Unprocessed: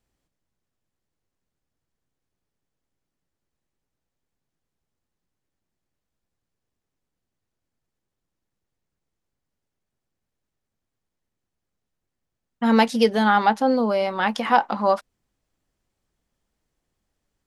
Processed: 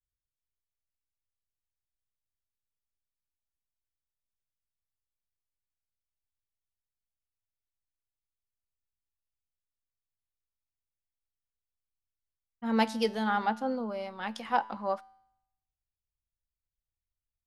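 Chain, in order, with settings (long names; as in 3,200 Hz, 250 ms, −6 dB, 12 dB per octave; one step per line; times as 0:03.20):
tuned comb filter 110 Hz, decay 1.3 s, harmonics all, mix 50%
multiband upward and downward expander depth 70%
level −6 dB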